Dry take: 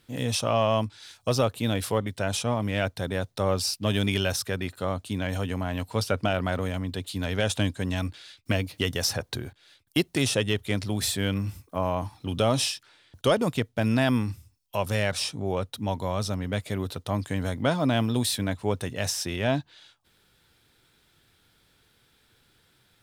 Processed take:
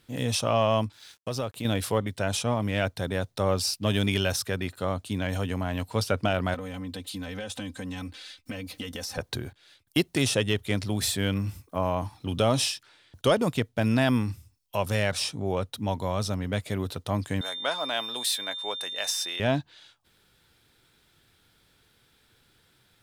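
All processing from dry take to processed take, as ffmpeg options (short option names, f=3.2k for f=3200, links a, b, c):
-filter_complex "[0:a]asettb=1/sr,asplit=3[a][b][c];[a]atrim=end=0.924[d];[b]atrim=start=0.92:end=1.65,asetpts=PTS-STARTPTS,afade=t=in:d=0.004:c=qsin,afade=t=out:st=0.726:d=0.004:c=qsin,acompressor=threshold=-31dB:ratio=2:attack=3.2:release=140:knee=1:detection=peak,aeval=exprs='sgn(val(0))*max(abs(val(0))-0.00188,0)':c=same[e];[c]atrim=start=1.646[f];[d][e]acrossfade=d=0.004:c1=hsin:c2=qsin[g];[g][f]acrossfade=d=0.004:c1=qsin:c2=hsin,asettb=1/sr,asplit=3[h][i][j];[h]atrim=end=6.544[k];[i]atrim=start=6.54:end=9.18,asetpts=PTS-STARTPTS,afade=t=in:d=0.004:c=qsin,afade=t=out:st=2.636:d=0.004:c=qsin,aecho=1:1:3.9:0.99,atrim=end_sample=116424,acompressor=threshold=-33dB:ratio=5:attack=3.2:release=140:knee=1:detection=peak[l];[j]atrim=start=9.176[m];[k][l]acrossfade=d=0.004:c1=hsin:c2=qsin[n];[n][m]acrossfade=d=0.004:c1=qsin:c2=hsin,asettb=1/sr,asplit=3[o][p][q];[o]atrim=end=17.414[r];[p]atrim=start=17.41:end=19.4,asetpts=PTS-STARTPTS,afade=t=in:d=0.004:c=qsin,afade=t=out:st=1.986:d=0.004:c=qsin,highpass=700,aeval=exprs='val(0)+0.0224*sin(2*PI*3600*n/s)':c=same[s];[q]atrim=start=19.396[t];[r][s]acrossfade=d=0.004:c1=hsin:c2=qsin[u];[u][t]acrossfade=d=0.004:c1=qsin:c2=hsin"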